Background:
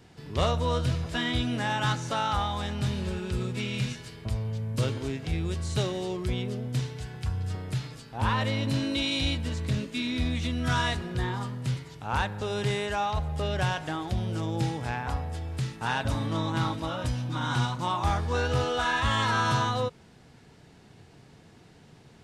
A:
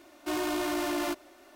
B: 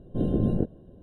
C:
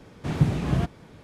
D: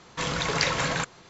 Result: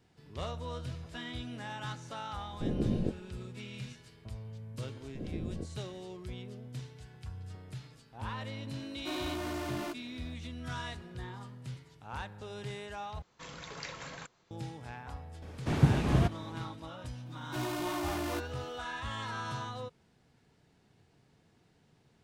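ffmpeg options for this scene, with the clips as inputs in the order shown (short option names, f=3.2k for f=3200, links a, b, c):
-filter_complex "[2:a]asplit=2[a][b];[1:a]asplit=2[c][d];[0:a]volume=-13dB[e];[c]highshelf=f=7.2k:g=-5.5[f];[3:a]equalizer=f=170:t=o:w=0.37:g=-5[g];[d]dynaudnorm=f=190:g=3:m=5.5dB[h];[e]asplit=2[i][j];[i]atrim=end=13.224[k];[4:a]atrim=end=1.29,asetpts=PTS-STARTPTS,volume=-18dB[l];[j]atrim=start=14.506[m];[a]atrim=end=1.02,asetpts=PTS-STARTPTS,volume=-7dB,afade=t=in:d=0.004:c=hsin,afade=t=out:st=1.016:d=0.004:c=hsin,adelay=2460[n];[b]atrim=end=1.02,asetpts=PTS-STARTPTS,volume=-15.5dB,afade=t=in:d=0.004:c=hsin,afade=t=out:st=1.016:d=0.004:c=hsin,adelay=5000[o];[f]atrim=end=1.55,asetpts=PTS-STARTPTS,volume=-7dB,afade=t=in:d=0.004:c=hsin,afade=t=out:st=1.546:d=0.004:c=hsin,adelay=8790[p];[g]atrim=end=1.23,asetpts=PTS-STARTPTS,volume=-1dB,afade=t=in:d=0.004:c=hsin,afade=t=out:st=1.226:d=0.004:c=hsin,adelay=15420[q];[h]atrim=end=1.55,asetpts=PTS-STARTPTS,volume=-11dB,afade=t=in:d=0.004:c=hsin,afade=t=out:st=1.546:d=0.004:c=hsin,adelay=17260[r];[k][l]acrossfade=d=0.004:c1=hsin:c2=hsin[s];[s][m]acrossfade=d=0.004:c1=hsin:c2=hsin[t];[t][n][o][p][q][r]amix=inputs=6:normalize=0"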